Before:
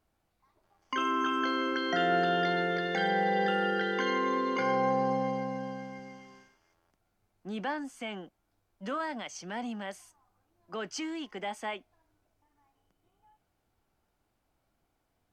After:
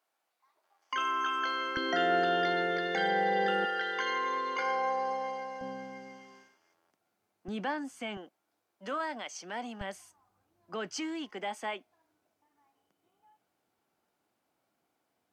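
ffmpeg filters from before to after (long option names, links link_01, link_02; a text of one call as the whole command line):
ffmpeg -i in.wav -af "asetnsamples=nb_out_samples=441:pad=0,asendcmd='1.77 highpass f 250;3.65 highpass f 650;5.61 highpass f 240;7.48 highpass f 77;8.17 highpass f 310;9.81 highpass f 82;11.3 highpass f 210',highpass=660" out.wav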